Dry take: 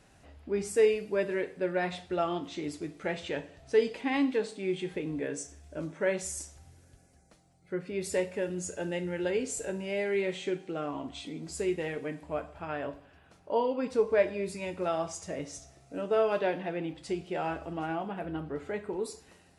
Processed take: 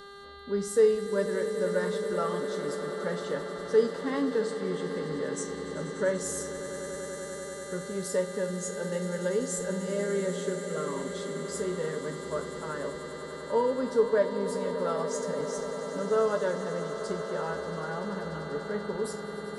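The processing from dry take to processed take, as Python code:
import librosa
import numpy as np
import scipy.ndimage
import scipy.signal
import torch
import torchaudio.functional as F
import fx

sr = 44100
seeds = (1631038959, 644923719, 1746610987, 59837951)

y = fx.dmg_buzz(x, sr, base_hz=400.0, harmonics=11, level_db=-46.0, tilt_db=-3, odd_only=False)
y = fx.fixed_phaser(y, sr, hz=490.0, stages=8)
y = fx.echo_swell(y, sr, ms=97, loudest=8, wet_db=-15.5)
y = y * librosa.db_to_amplitude(3.0)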